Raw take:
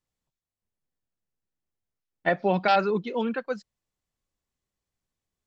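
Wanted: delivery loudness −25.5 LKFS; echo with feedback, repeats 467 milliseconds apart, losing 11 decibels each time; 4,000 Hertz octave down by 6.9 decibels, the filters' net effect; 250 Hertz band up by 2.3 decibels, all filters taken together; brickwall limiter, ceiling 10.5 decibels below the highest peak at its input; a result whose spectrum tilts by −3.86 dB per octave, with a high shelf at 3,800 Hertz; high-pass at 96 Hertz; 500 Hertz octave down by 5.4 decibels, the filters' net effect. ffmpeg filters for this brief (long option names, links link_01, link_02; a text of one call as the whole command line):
ffmpeg -i in.wav -af "highpass=96,equalizer=frequency=250:width_type=o:gain=5,equalizer=frequency=500:width_type=o:gain=-8,highshelf=frequency=3800:gain=-8,equalizer=frequency=4000:width_type=o:gain=-4,alimiter=limit=-23.5dB:level=0:latency=1,aecho=1:1:467|934|1401:0.282|0.0789|0.0221,volume=8dB" out.wav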